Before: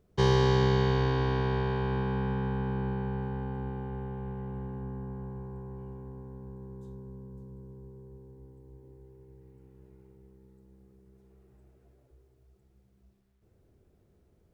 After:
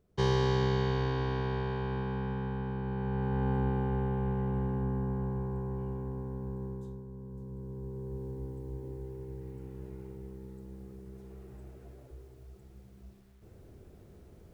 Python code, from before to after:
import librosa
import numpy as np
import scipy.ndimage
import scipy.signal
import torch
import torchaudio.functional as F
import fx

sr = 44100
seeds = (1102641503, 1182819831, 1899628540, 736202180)

y = fx.gain(x, sr, db=fx.line((2.83, -4.0), (3.49, 6.0), (6.66, 6.0), (7.07, -1.0), (8.25, 11.5)))